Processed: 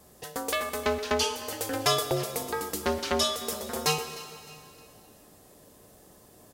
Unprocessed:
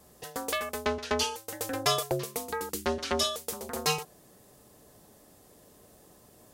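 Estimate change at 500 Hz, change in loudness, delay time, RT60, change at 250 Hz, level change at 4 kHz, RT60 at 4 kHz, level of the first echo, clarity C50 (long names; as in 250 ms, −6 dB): +2.5 dB, +2.0 dB, 306 ms, 2.6 s, +2.0 dB, +2.0 dB, 2.4 s, −18.5 dB, 9.0 dB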